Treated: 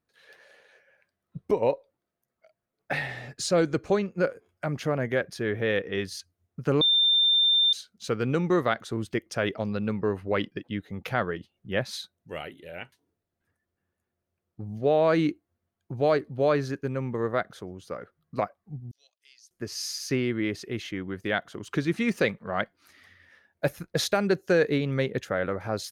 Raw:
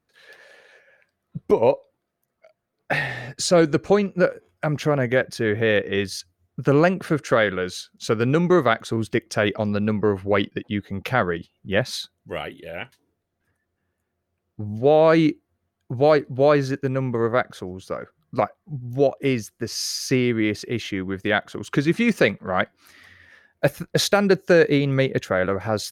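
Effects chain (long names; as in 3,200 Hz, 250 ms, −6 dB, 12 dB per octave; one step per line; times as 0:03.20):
0:06.81–0:07.73: beep over 3,590 Hz −11.5 dBFS
0:18.91–0:19.51: four-pole ladder band-pass 5,400 Hz, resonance 45%
level −6.5 dB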